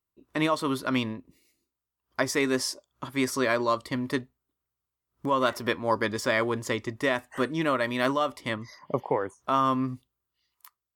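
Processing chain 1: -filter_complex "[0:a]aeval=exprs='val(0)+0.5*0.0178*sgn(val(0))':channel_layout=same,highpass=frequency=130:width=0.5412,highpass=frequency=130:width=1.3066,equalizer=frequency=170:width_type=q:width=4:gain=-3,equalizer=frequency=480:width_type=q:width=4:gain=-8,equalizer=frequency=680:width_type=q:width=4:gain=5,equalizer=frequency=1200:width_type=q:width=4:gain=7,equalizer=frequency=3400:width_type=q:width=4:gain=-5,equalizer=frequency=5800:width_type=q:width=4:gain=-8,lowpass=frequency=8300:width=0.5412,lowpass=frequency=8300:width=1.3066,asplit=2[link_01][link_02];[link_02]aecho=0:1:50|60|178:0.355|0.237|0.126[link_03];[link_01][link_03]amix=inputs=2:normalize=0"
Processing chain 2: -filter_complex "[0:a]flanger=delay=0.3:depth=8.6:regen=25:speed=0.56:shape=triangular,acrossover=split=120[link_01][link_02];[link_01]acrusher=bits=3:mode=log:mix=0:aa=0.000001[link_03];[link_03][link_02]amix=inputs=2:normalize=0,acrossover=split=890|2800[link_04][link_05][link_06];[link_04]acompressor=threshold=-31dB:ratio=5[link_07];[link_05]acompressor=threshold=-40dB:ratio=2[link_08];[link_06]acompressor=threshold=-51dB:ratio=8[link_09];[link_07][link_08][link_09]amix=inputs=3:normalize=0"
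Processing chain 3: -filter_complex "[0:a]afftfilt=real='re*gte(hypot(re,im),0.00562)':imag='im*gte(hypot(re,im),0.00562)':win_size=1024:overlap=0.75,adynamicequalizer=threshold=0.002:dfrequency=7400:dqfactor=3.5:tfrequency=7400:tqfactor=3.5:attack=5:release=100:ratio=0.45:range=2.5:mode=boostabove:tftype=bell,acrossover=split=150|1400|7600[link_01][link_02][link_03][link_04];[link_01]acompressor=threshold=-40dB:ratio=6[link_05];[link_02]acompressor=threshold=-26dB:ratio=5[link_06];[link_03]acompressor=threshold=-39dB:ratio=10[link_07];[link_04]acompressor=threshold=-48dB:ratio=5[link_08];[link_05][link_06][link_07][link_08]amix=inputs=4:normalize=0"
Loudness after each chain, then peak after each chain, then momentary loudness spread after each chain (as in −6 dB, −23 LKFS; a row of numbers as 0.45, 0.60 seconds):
−25.0, −35.5, −32.0 LKFS; −6.0, −17.0, −12.5 dBFS; 18, 8, 7 LU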